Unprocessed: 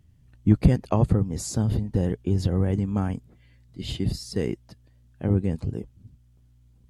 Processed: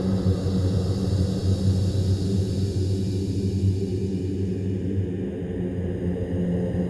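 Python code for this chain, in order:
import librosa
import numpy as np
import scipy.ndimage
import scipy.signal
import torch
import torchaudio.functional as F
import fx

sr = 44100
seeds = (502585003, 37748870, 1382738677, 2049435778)

y = np.flip(x).copy()
y = fx.paulstretch(y, sr, seeds[0], factor=15.0, window_s=0.5, from_s=4.35)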